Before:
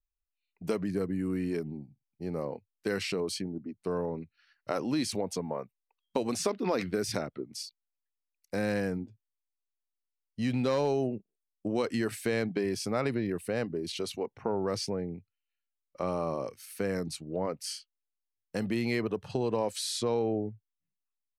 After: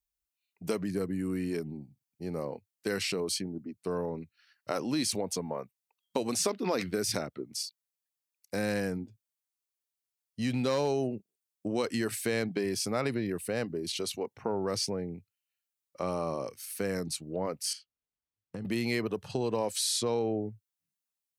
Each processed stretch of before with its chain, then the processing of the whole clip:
17.73–18.65 s: RIAA curve playback + compression 10:1, threshold -34 dBFS
whole clip: high-pass 41 Hz; treble shelf 4.3 kHz +8.5 dB; trim -1 dB

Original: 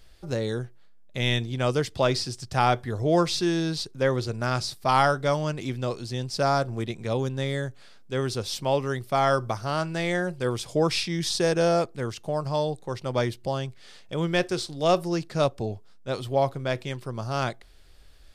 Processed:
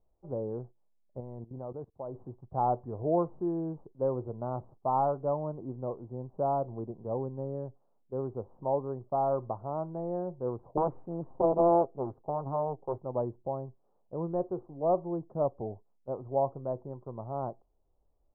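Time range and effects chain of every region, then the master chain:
1.20–2.21 s: level held to a coarse grid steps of 16 dB + loudspeaker Doppler distortion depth 0.1 ms
10.77–12.98 s: peaking EQ 480 Hz +4 dB 1.8 oct + comb 7.5 ms, depth 35% + loudspeaker Doppler distortion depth 0.8 ms
whole clip: gate -39 dBFS, range -9 dB; steep low-pass 1 kHz 48 dB/octave; bass shelf 260 Hz -8 dB; trim -3.5 dB

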